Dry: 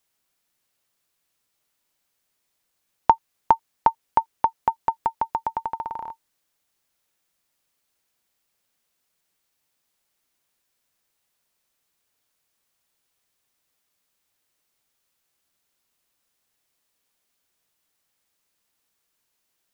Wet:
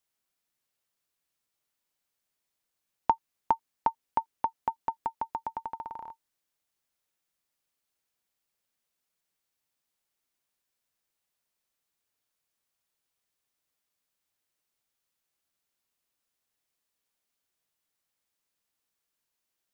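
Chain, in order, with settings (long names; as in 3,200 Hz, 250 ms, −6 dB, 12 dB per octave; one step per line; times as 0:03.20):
dynamic equaliser 260 Hz, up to +6 dB, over −49 dBFS, Q 3.2
level −8.5 dB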